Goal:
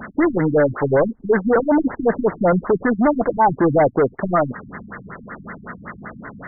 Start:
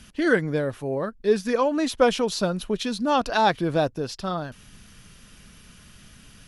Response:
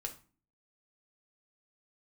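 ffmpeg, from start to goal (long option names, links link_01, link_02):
-filter_complex "[0:a]asplit=2[link_01][link_02];[link_02]highpass=frequency=720:poles=1,volume=36dB,asoftclip=type=tanh:threshold=-6dB[link_03];[link_01][link_03]amix=inputs=2:normalize=0,lowpass=frequency=2900:poles=1,volume=-6dB,lowshelf=frequency=150:gain=-5.5,afftfilt=real='re*lt(b*sr/1024,250*pow(2200/250,0.5+0.5*sin(2*PI*5.3*pts/sr)))':imag='im*lt(b*sr/1024,250*pow(2200/250,0.5+0.5*sin(2*PI*5.3*pts/sr)))':win_size=1024:overlap=0.75"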